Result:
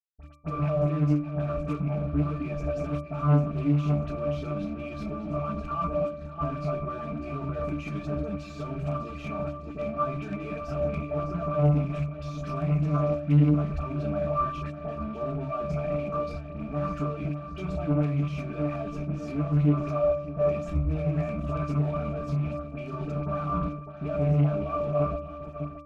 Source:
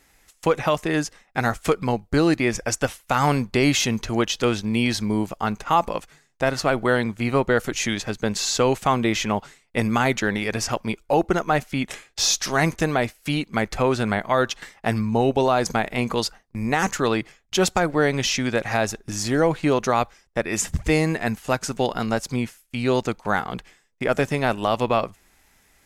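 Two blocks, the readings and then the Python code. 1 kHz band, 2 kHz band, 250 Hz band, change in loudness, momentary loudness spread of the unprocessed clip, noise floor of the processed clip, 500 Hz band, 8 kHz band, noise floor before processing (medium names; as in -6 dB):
-10.0 dB, -19.0 dB, -5.5 dB, -6.0 dB, 7 LU, -40 dBFS, -7.0 dB, under -30 dB, -61 dBFS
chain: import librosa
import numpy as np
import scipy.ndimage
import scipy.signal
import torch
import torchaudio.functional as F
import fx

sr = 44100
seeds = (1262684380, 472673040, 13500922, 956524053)

p1 = fx.over_compress(x, sr, threshold_db=-27.0, ratio=-0.5)
p2 = x + (p1 * librosa.db_to_amplitude(2.0))
p3 = fx.high_shelf(p2, sr, hz=8900.0, db=-7.0)
p4 = fx.room_shoebox(p3, sr, seeds[0], volume_m3=60.0, walls='mixed', distance_m=0.43)
p5 = fx.level_steps(p4, sr, step_db=14)
p6 = fx.dereverb_blind(p5, sr, rt60_s=0.59)
p7 = p6 + fx.echo_feedback(p6, sr, ms=602, feedback_pct=33, wet_db=-13.5, dry=0)
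p8 = fx.fuzz(p7, sr, gain_db=36.0, gate_db=-41.0)
p9 = p8 + 0.98 * np.pad(p8, (int(4.5 * sr / 1000.0), 0))[:len(p8)]
p10 = fx.dispersion(p9, sr, late='highs', ms=48.0, hz=1800.0)
p11 = (np.mod(10.0 ** (1.5 / 20.0) * p10 + 1.0, 2.0) - 1.0) / 10.0 ** (1.5 / 20.0)
p12 = fx.octave_resonator(p11, sr, note='D', decay_s=0.43)
p13 = fx.doppler_dist(p12, sr, depth_ms=0.3)
y = p13 * librosa.db_to_amplitude(3.0)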